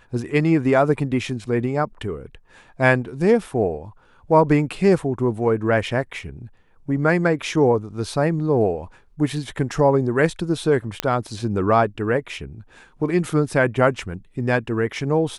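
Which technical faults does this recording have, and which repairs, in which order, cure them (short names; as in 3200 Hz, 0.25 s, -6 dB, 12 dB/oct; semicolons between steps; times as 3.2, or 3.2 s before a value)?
11 pop -4 dBFS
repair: de-click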